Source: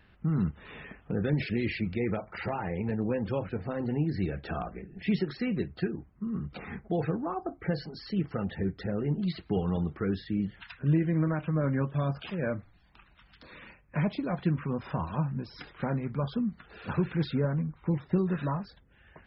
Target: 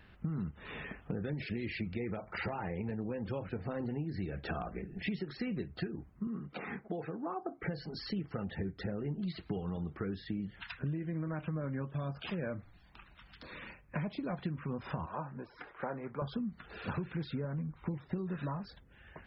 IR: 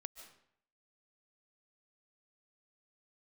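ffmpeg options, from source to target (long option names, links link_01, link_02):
-filter_complex "[0:a]asettb=1/sr,asplit=3[link_01][link_02][link_03];[link_01]atrim=end=15.064[link_04];[link_02]atrim=start=15.06:end=16.22,asetpts=PTS-STARTPTS,afade=type=in:duration=0.004:curve=qsin,afade=type=out:start_time=1.156:duration=0.004:curve=qsin,acrossover=split=370 2100:gain=0.158 1 0.0794[link_05][link_06][link_07];[link_05][link_06][link_07]amix=inputs=3:normalize=0[link_08];[link_03]atrim=start=16.216[link_09];[link_04][link_08]acrossfade=duration=0.004:curve1=hsin:curve2=qsin[link_10];[link_10][link_09]acrossfade=duration=0.004:curve1=qsin:curve2=hsin,acompressor=threshold=-35dB:ratio=10,asettb=1/sr,asplit=3[link_11][link_12][link_13];[link_11]atrim=end=6.274[link_14];[link_12]atrim=start=6.27:end=7.63,asetpts=PTS-STARTPTS,afade=type=in:duration=0.004:curve=qsin,afade=type=out:start_time=1.356:duration=0.004:curve=qsin,highpass=200,lowpass=3500[link_15];[link_13]atrim=start=7.626[link_16];[link_14][link_15]acrossfade=duration=0.004:curve1=hsin:curve2=qsin[link_17];[link_17][link_16]acrossfade=duration=0.004:curve1=qsin:curve2=hsin,volume=1.5dB"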